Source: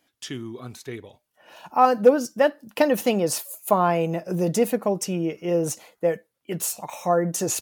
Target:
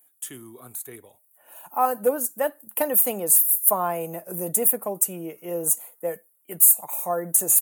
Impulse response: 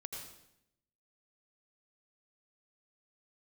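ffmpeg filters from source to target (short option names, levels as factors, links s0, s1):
-filter_complex "[0:a]equalizer=f=910:w=0.46:g=8.5,acrossover=split=240|910|3300[s0][s1][s2][s3];[s3]aexciter=amount=14.3:drive=9.7:freq=8100[s4];[s0][s1][s2][s4]amix=inputs=4:normalize=0,volume=0.237"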